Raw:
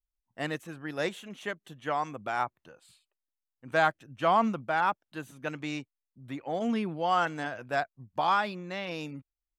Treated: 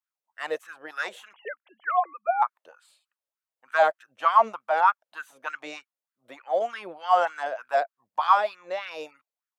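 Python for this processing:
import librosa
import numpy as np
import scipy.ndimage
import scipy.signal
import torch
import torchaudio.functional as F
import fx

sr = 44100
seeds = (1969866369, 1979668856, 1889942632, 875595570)

y = fx.sine_speech(x, sr, at=(1.33, 2.42))
y = fx.filter_lfo_highpass(y, sr, shape='sine', hz=3.3, low_hz=500.0, high_hz=1500.0, q=5.4)
y = F.gain(torch.from_numpy(y), -1.5).numpy()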